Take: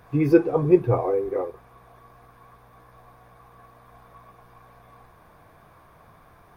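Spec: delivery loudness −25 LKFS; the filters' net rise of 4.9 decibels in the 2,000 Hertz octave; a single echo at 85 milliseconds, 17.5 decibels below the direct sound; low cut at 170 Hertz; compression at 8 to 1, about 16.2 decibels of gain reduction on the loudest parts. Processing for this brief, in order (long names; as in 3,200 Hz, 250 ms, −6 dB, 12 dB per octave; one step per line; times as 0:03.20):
high-pass filter 170 Hz
parametric band 2,000 Hz +7 dB
downward compressor 8 to 1, threshold −27 dBFS
single-tap delay 85 ms −17.5 dB
level +7 dB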